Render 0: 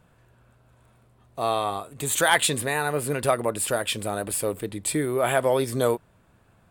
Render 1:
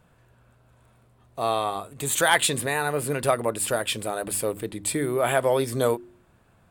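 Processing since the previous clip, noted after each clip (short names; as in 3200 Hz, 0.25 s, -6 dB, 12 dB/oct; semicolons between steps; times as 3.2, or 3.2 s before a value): de-hum 51.2 Hz, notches 7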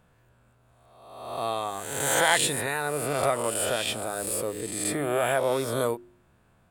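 spectral swells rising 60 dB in 1.09 s; gain -5.5 dB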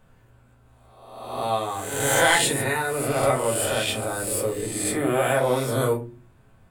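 reverb, pre-delay 4 ms, DRR -1 dB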